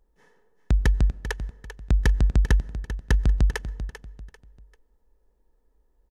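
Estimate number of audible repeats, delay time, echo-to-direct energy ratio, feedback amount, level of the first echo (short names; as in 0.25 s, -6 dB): 3, 0.393 s, -11.0 dB, 32%, -11.5 dB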